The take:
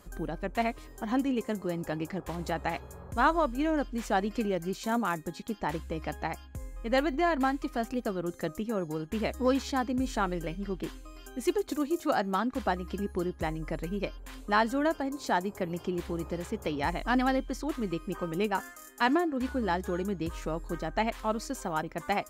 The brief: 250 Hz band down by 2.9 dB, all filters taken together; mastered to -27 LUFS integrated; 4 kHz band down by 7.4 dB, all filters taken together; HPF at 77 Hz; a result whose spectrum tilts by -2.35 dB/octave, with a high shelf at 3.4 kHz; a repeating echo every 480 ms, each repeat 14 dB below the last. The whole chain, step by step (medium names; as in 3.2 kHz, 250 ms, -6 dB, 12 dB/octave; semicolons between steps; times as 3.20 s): high-pass 77 Hz; peaking EQ 250 Hz -3.5 dB; treble shelf 3.4 kHz -3.5 dB; peaking EQ 4 kHz -8 dB; feedback delay 480 ms, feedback 20%, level -14 dB; trim +6 dB